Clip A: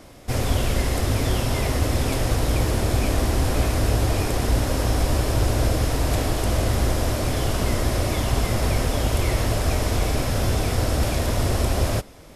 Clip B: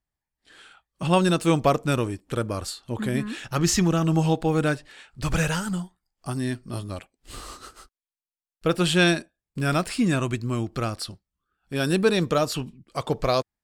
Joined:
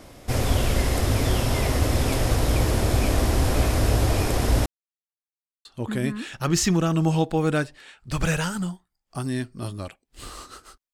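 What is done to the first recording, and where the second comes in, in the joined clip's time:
clip A
4.66–5.65 s: mute
5.65 s: go over to clip B from 2.76 s

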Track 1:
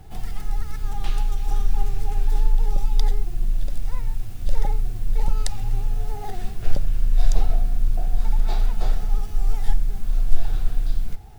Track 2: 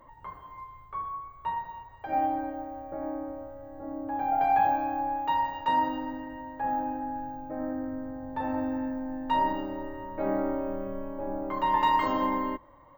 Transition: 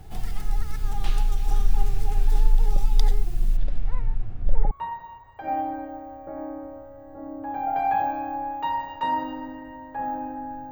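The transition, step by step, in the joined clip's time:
track 1
3.56–4.71 s: low-pass 3.2 kHz -> 1.1 kHz
4.71 s: go over to track 2 from 1.36 s

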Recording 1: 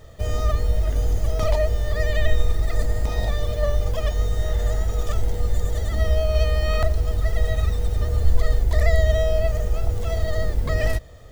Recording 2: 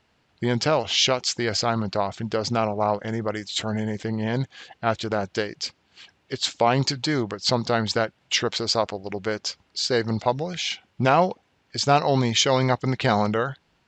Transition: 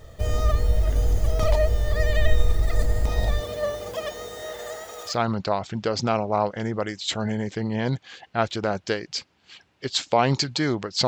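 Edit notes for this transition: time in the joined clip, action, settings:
recording 1
3.39–5.17 s: high-pass 160 Hz -> 720 Hz
5.11 s: go over to recording 2 from 1.59 s, crossfade 0.12 s

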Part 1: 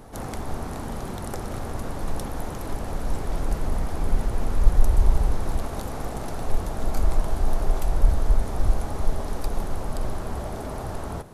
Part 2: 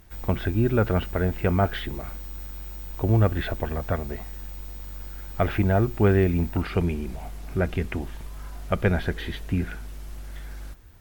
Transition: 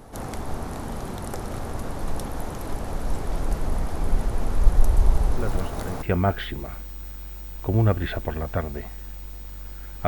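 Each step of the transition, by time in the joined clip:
part 1
5.37 s: add part 2 from 0.72 s 0.65 s -9.5 dB
6.02 s: go over to part 2 from 1.37 s

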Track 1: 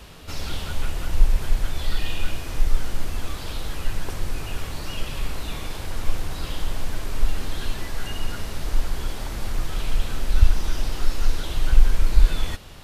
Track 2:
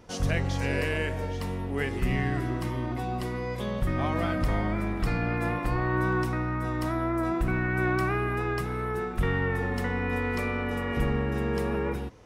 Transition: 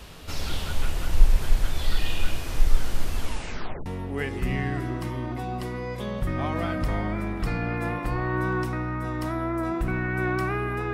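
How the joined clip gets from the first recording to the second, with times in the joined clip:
track 1
3.19 s: tape stop 0.67 s
3.86 s: go over to track 2 from 1.46 s

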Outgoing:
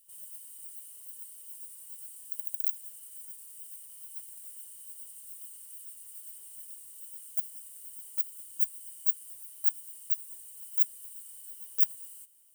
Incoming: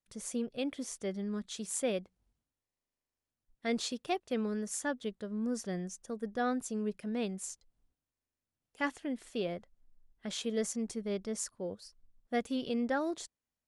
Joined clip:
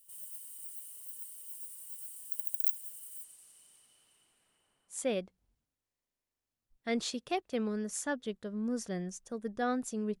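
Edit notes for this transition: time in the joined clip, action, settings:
outgoing
3.23–5.04 s: low-pass 9.1 kHz -> 1.2 kHz
4.96 s: go over to incoming from 1.74 s, crossfade 0.16 s

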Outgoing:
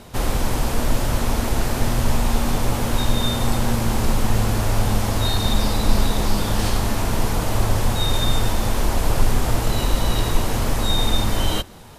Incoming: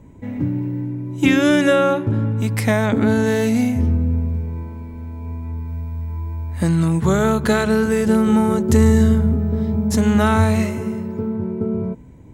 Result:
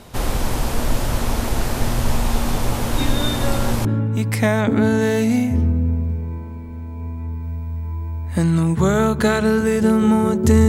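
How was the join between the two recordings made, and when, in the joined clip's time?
outgoing
2.93 s: add incoming from 1.18 s 0.92 s -13.5 dB
3.85 s: go over to incoming from 2.10 s

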